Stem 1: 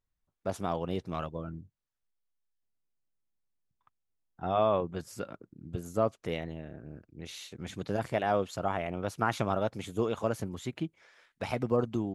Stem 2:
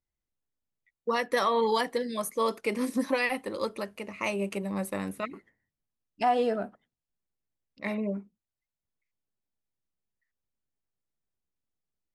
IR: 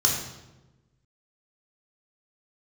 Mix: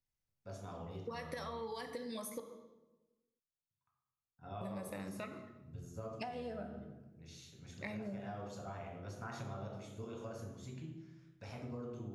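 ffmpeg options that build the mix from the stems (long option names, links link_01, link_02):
-filter_complex "[0:a]volume=-19.5dB,asplit=2[link_01][link_02];[link_02]volume=-7.5dB[link_03];[1:a]acompressor=threshold=-29dB:ratio=6,volume=-4dB,asplit=3[link_04][link_05][link_06];[link_04]atrim=end=2.4,asetpts=PTS-STARTPTS,afade=type=out:start_time=2.396:duration=0.004:curve=hsin[link_07];[link_05]atrim=start=2.4:end=4.61,asetpts=PTS-STARTPTS,volume=0[link_08];[link_06]atrim=start=4.61,asetpts=PTS-STARTPTS,afade=type=in:duration=0.004:curve=hsin[link_09];[link_07][link_08][link_09]concat=n=3:v=0:a=1,asplit=2[link_10][link_11];[link_11]volume=-18.5dB[link_12];[2:a]atrim=start_sample=2205[link_13];[link_03][link_12]amix=inputs=2:normalize=0[link_14];[link_14][link_13]afir=irnorm=-1:irlink=0[link_15];[link_01][link_10][link_15]amix=inputs=3:normalize=0,acompressor=threshold=-40dB:ratio=6"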